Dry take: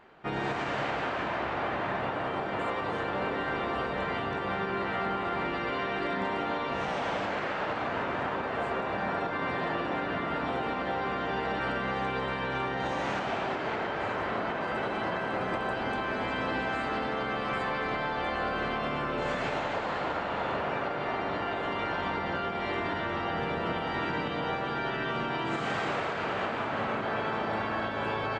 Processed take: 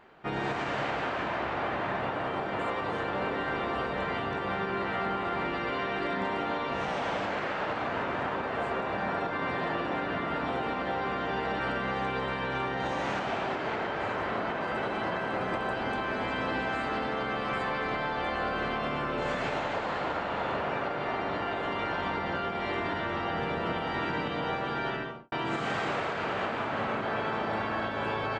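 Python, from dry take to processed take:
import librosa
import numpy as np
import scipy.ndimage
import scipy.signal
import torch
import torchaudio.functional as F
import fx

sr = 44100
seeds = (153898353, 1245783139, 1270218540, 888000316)

y = fx.studio_fade_out(x, sr, start_s=24.89, length_s=0.43)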